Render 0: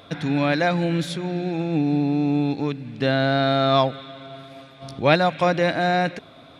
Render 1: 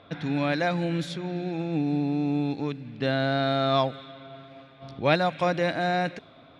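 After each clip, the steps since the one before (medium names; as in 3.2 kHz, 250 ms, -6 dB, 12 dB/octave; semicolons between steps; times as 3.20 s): level-controlled noise filter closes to 2.9 kHz, open at -17 dBFS; trim -5 dB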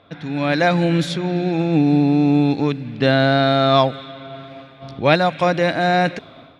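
level rider gain up to 11 dB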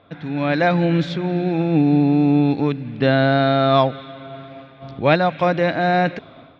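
distance through air 180 m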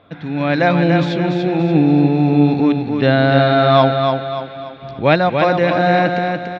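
feedback delay 289 ms, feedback 40%, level -5 dB; trim +2.5 dB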